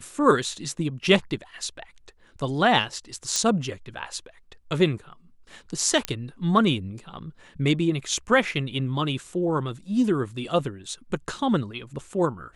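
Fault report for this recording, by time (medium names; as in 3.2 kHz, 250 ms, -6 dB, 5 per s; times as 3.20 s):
3.36 s: pop -10 dBFS
6.05 s: pop -8 dBFS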